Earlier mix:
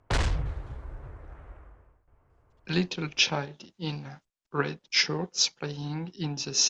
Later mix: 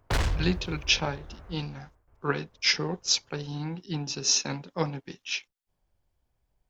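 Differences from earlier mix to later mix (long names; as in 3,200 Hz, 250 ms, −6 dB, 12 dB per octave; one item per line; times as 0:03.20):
speech: entry −2.30 s
master: remove low-pass filter 9,200 Hz 24 dB per octave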